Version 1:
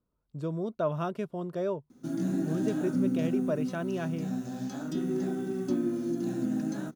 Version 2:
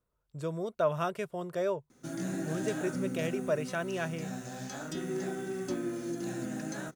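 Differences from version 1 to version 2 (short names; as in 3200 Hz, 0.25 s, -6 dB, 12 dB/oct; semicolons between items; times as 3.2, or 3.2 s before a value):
speech: add high shelf 9800 Hz +10.5 dB; master: add graphic EQ 250/500/2000/8000 Hz -10/+3/+7/+7 dB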